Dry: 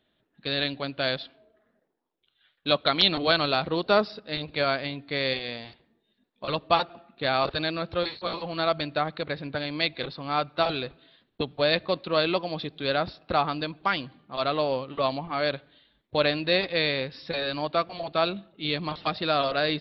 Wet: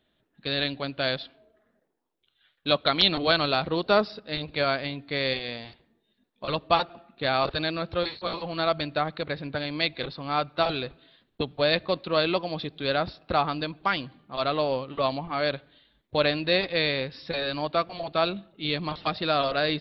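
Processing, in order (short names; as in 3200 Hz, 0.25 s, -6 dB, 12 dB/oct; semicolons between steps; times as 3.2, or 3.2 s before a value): low shelf 63 Hz +6 dB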